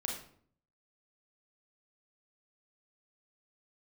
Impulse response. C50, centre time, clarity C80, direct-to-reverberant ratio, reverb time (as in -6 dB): 4.0 dB, 36 ms, 8.5 dB, -0.5 dB, 0.55 s